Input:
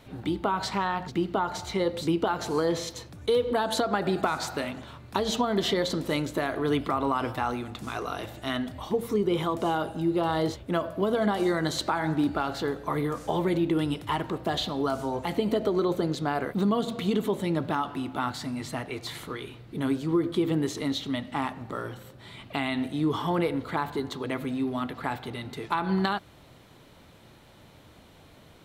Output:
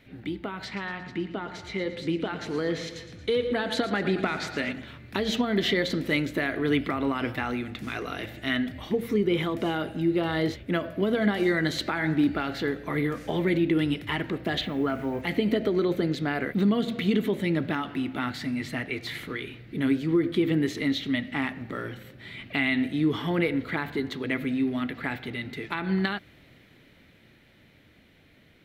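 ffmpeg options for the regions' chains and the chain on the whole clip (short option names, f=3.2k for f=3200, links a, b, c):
-filter_complex "[0:a]asettb=1/sr,asplit=3[a][b][c];[a]atrim=end=0.654[d];[b]atrim=start=0.65:end=4.73,asetpts=PTS-STARTPTS,afade=t=in:d=0.004:c=qsin,afade=t=out:st=4.076:d=0.004:c=qsin,lowpass=8.9k,aecho=1:1:114|228|342|456|570:0.251|0.128|0.0653|0.0333|0.017,atrim=end_sample=179928[e];[c]atrim=start=4.726[f];[d][e]acrossfade=d=0.004:c1=hsin:c2=qsin[g];[g][f]acrossfade=d=0.004:c1=qsin:c2=hsin,asettb=1/sr,asplit=3[h][i][j];[h]atrim=end=14.614[k];[i]atrim=start=14.61:end=15.22,asetpts=PTS-STARTPTS,afade=t=in:d=0.004:c=qsin,afade=t=out:st=0.606:d=0.004:c=qsin,highshelf=f=3.2k:t=q:w=1.5:g=-10.5,acrusher=bits=8:mix=0:aa=0.5[l];[j]atrim=start=15.216[m];[k][l]acrossfade=d=0.004:c1=hsin:c2=qsin[n];[n][m]acrossfade=d=0.004:c1=qsin:c2=hsin,dynaudnorm=f=260:g=21:m=6dB,equalizer=f=250:t=o:w=1:g=4,equalizer=f=1k:t=o:w=1:g=-10,equalizer=f=2k:t=o:w=1:g=11,equalizer=f=8k:t=o:w=1:g=-7,volume=-6dB"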